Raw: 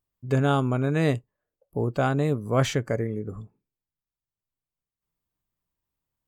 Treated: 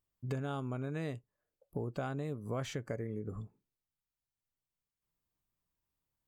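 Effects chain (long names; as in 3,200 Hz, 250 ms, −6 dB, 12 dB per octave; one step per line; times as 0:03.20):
downward compressor 6 to 1, threshold −32 dBFS, peak gain reduction 14.5 dB
level −3 dB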